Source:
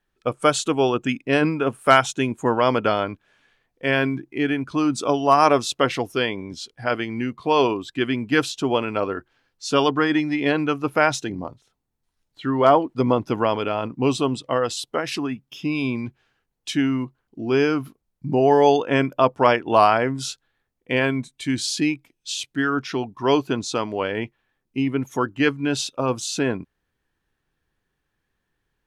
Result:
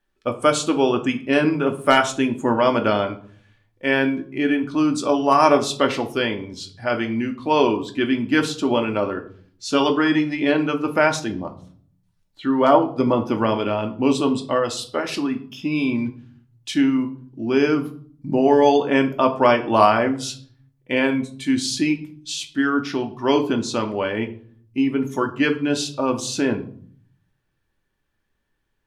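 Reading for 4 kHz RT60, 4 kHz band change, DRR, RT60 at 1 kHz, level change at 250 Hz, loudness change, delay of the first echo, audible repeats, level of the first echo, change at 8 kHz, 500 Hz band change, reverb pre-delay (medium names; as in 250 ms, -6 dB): 0.35 s, +0.5 dB, 4.0 dB, 0.45 s, +3.0 dB, +1.0 dB, no echo, no echo, no echo, 0.0 dB, +1.0 dB, 3 ms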